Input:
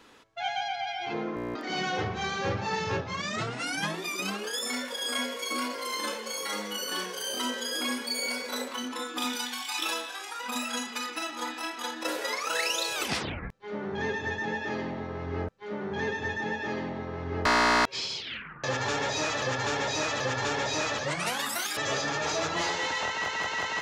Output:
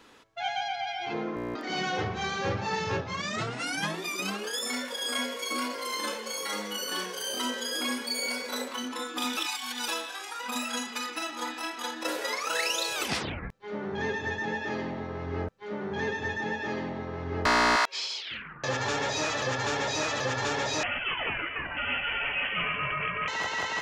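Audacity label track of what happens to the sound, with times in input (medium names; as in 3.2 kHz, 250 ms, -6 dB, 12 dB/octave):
9.370000	9.880000	reverse
17.760000	18.310000	high-pass 650 Hz
20.830000	23.280000	frequency inversion carrier 3.2 kHz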